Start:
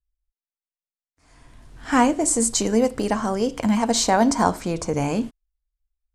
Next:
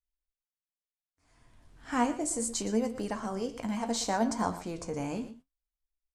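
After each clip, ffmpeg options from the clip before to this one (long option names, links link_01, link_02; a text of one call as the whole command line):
ffmpeg -i in.wav -af "aecho=1:1:119:0.2,flanger=delay=8.8:depth=8.5:regen=56:speed=0.7:shape=sinusoidal,volume=-7.5dB" out.wav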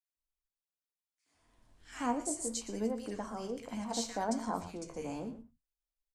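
ffmpeg -i in.wav -filter_complex "[0:a]acrossover=split=150|1800[link_01][link_02][link_03];[link_02]adelay=80[link_04];[link_01]adelay=160[link_05];[link_05][link_04][link_03]amix=inputs=3:normalize=0,volume=-4.5dB" out.wav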